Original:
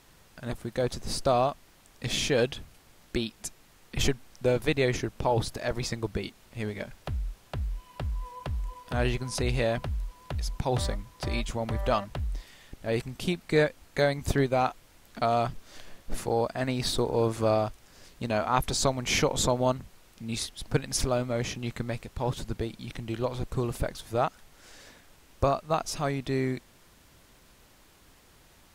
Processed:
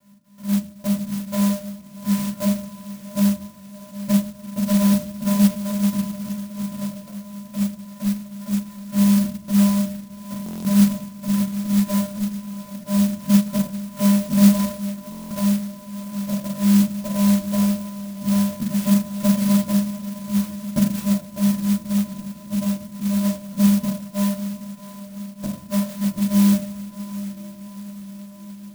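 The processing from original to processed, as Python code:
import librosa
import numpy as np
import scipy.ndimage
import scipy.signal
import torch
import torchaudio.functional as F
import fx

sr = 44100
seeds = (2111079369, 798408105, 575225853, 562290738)

y = fx.dynamic_eq(x, sr, hz=1000.0, q=0.84, threshold_db=-38.0, ratio=4.0, max_db=-4)
y = fx.vocoder(y, sr, bands=4, carrier='square', carrier_hz=201.0)
y = fx.step_gate(y, sr, bpm=125, pattern='x.xxx..xx', floor_db=-24.0, edge_ms=4.5)
y = fx.echo_diffused(y, sr, ms=778, feedback_pct=60, wet_db=-13)
y = fx.room_shoebox(y, sr, seeds[0], volume_m3=300.0, walls='furnished', distance_m=4.1)
y = fx.buffer_glitch(y, sr, at_s=(10.44, 15.1), block=1024, repeats=8)
y = fx.clock_jitter(y, sr, seeds[1], jitter_ms=0.12)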